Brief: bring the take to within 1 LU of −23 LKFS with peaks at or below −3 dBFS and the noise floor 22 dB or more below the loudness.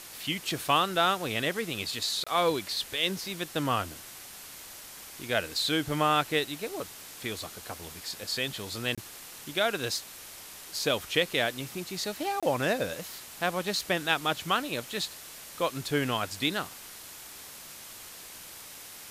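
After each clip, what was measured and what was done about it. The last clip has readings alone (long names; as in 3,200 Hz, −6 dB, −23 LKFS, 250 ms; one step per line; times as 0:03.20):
number of dropouts 3; longest dropout 26 ms; background noise floor −46 dBFS; target noise floor −52 dBFS; integrated loudness −30.0 LKFS; sample peak −9.0 dBFS; target loudness −23.0 LKFS
→ repair the gap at 0:02.24/0:08.95/0:12.40, 26 ms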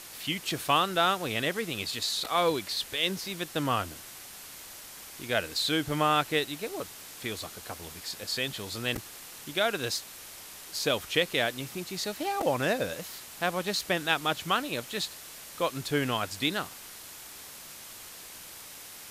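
number of dropouts 0; background noise floor −46 dBFS; target noise floor −52 dBFS
→ broadband denoise 6 dB, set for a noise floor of −46 dBFS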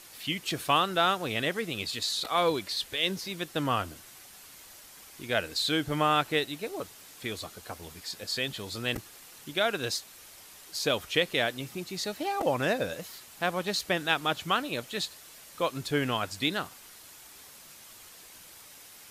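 background noise floor −51 dBFS; target noise floor −52 dBFS
→ broadband denoise 6 dB, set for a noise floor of −51 dBFS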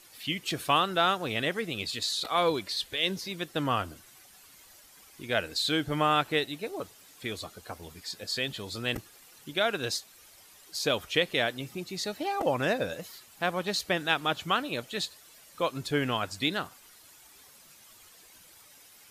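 background noise floor −56 dBFS; integrated loudness −30.0 LKFS; sample peak −9.0 dBFS; target loudness −23.0 LKFS
→ level +7 dB
brickwall limiter −3 dBFS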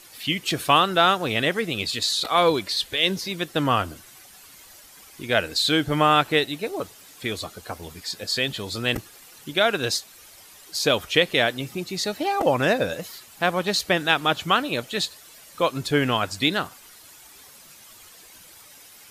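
integrated loudness −23.0 LKFS; sample peak −3.0 dBFS; background noise floor −49 dBFS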